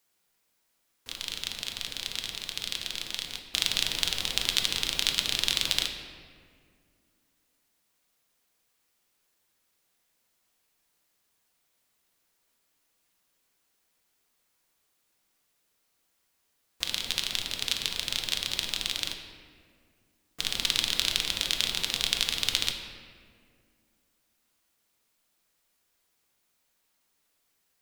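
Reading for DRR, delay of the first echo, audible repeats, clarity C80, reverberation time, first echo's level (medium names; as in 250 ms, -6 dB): 3.5 dB, no echo, no echo, 7.5 dB, 2.1 s, no echo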